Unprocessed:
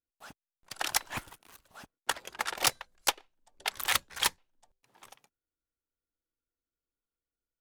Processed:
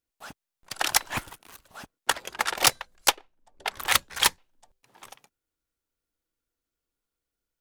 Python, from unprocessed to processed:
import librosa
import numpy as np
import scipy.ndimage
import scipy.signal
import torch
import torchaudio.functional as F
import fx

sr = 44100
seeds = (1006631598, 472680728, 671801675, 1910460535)

y = fx.high_shelf(x, sr, hz=2300.0, db=-9.0, at=(3.15, 3.9), fade=0.02)
y = F.gain(torch.from_numpy(y), 6.5).numpy()